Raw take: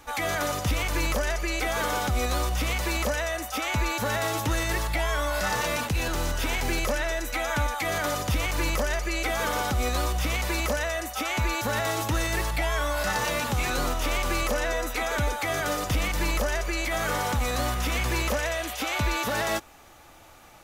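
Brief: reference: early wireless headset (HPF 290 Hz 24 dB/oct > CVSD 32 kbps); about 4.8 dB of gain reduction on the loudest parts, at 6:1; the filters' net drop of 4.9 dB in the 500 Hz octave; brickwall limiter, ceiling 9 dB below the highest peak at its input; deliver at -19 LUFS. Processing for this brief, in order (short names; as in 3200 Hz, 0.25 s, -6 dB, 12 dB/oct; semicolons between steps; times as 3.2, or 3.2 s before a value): bell 500 Hz -6.5 dB; compressor 6:1, threshold -27 dBFS; limiter -26.5 dBFS; HPF 290 Hz 24 dB/oct; CVSD 32 kbps; gain +17.5 dB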